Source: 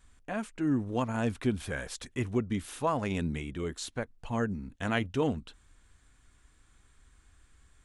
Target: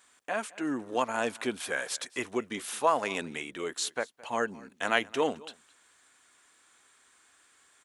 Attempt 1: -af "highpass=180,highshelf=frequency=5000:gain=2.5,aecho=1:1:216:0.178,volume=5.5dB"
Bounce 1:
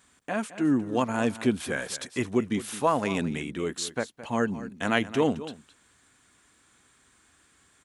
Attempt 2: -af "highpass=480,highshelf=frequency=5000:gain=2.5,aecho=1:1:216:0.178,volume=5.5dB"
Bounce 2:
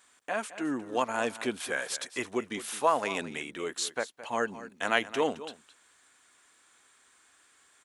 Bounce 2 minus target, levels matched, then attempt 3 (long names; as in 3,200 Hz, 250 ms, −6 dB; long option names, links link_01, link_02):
echo-to-direct +7 dB
-af "highpass=480,highshelf=frequency=5000:gain=2.5,aecho=1:1:216:0.0794,volume=5.5dB"